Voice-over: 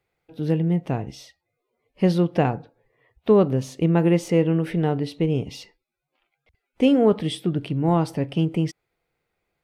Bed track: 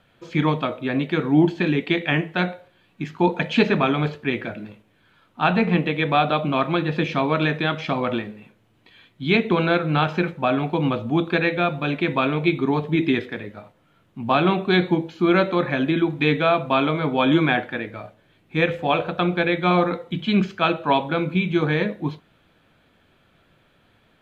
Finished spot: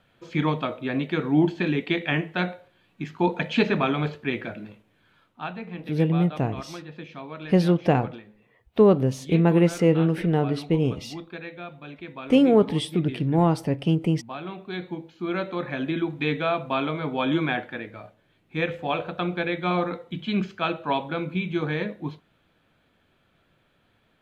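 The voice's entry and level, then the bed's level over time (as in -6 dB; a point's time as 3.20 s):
5.50 s, 0.0 dB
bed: 5.21 s -3.5 dB
5.54 s -17 dB
14.45 s -17 dB
15.91 s -6 dB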